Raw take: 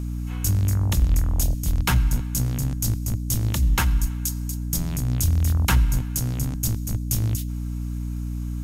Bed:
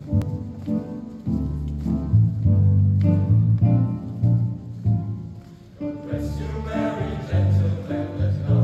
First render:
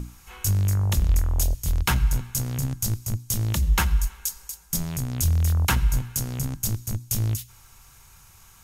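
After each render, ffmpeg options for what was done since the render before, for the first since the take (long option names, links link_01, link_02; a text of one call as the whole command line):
ffmpeg -i in.wav -af "bandreject=frequency=60:width_type=h:width=6,bandreject=frequency=120:width_type=h:width=6,bandreject=frequency=180:width_type=h:width=6,bandreject=frequency=240:width_type=h:width=6,bandreject=frequency=300:width_type=h:width=6,bandreject=frequency=360:width_type=h:width=6" out.wav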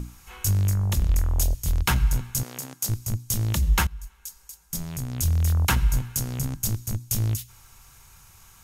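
ffmpeg -i in.wav -filter_complex "[0:a]asettb=1/sr,asplit=3[link_01][link_02][link_03];[link_01]atrim=end=0.714[link_04];[link_02]atrim=start=0.71:end=1.2,asetpts=PTS-STARTPTS,afade=type=in:duration=0.004:curve=qsin,afade=type=out:start_time=0.486:duration=0.004:curve=qsin,aeval=exprs='if(lt(val(0),0),0.708*val(0),val(0))':channel_layout=same[link_05];[link_03]atrim=start=1.196[link_06];[link_04][link_05]acrossfade=duration=0.004:curve1=hsin:curve2=qsin[link_07];[link_07][link_06]acrossfade=duration=0.004:curve1=qsin:curve2=hsin,asettb=1/sr,asplit=3[link_08][link_09][link_10];[link_08]atrim=end=2.434[link_11];[link_09]atrim=start=2.43:end=2.89,asetpts=PTS-STARTPTS,afade=type=in:duration=0.004:curve=qsin,afade=type=out:start_time=0.456:duration=0.004:curve=qsin,highpass=380[link_12];[link_10]atrim=start=2.886[link_13];[link_11][link_12]acrossfade=duration=0.004:curve1=hsin:curve2=qsin[link_14];[link_14][link_13]acrossfade=duration=0.004:curve1=qsin:curve2=hsin,asplit=2[link_15][link_16];[link_15]atrim=end=3.87,asetpts=PTS-STARTPTS,afade=type=out:start_time=3.866:duration=0.004:curve=hsin:silence=0.1[link_17];[link_16]atrim=start=3.87,asetpts=PTS-STARTPTS,afade=type=in:duration=1.67:silence=0.1[link_18];[link_17][link_18]concat=n=2:v=0:a=1" out.wav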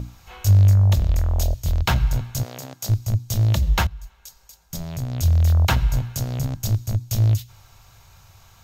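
ffmpeg -i in.wav -af "equalizer=frequency=100:width_type=o:width=0.67:gain=9,equalizer=frequency=630:width_type=o:width=0.67:gain=10,equalizer=frequency=4000:width_type=o:width=0.67:gain=5,equalizer=frequency=10000:width_type=o:width=0.67:gain=-12" out.wav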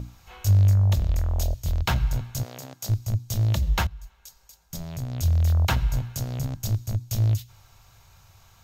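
ffmpeg -i in.wav -af "volume=-4dB" out.wav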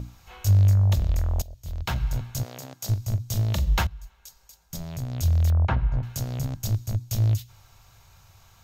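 ffmpeg -i in.wav -filter_complex "[0:a]asettb=1/sr,asplit=3[link_01][link_02][link_03];[link_01]atrim=end=2.844[link_04];[link_02]atrim=start=2.84:end=3.79,asetpts=PTS-STARTPTS,afade=type=in:duration=0.004:curve=qsin,afade=type=out:start_time=0.946:duration=0.004:curve=qsin,asplit=2[link_05][link_06];[link_06]adelay=41,volume=-10.5dB[link_07];[link_05][link_07]amix=inputs=2:normalize=0,atrim=end_sample=41895[link_08];[link_03]atrim=start=3.786[link_09];[link_04][link_08]acrossfade=duration=0.004:curve1=hsin:curve2=qsin[link_10];[link_10][link_09]acrossfade=duration=0.004:curve1=qsin:curve2=hsin,asettb=1/sr,asplit=3[link_11][link_12][link_13];[link_11]atrim=end=5.504[link_14];[link_12]atrim=start=5.5:end=6.03,asetpts=PTS-STARTPTS,afade=type=in:duration=0.004:curve=qsin,afade=type=out:start_time=0.526:duration=0.004:curve=qsin,lowpass=1600[link_15];[link_13]atrim=start=6.026[link_16];[link_14][link_15]acrossfade=duration=0.004:curve1=hsin:curve2=qsin[link_17];[link_17][link_16]acrossfade=duration=0.004:curve1=qsin:curve2=hsin,asplit=2[link_18][link_19];[link_18]atrim=end=1.42,asetpts=PTS-STARTPTS,afade=type=out:start_time=1.416:duration=0.004:curve=hsin:silence=0.0749894[link_20];[link_19]atrim=start=1.42,asetpts=PTS-STARTPTS,afade=type=in:duration=0.85:silence=0.0749894[link_21];[link_20][link_21]concat=n=2:v=0:a=1" out.wav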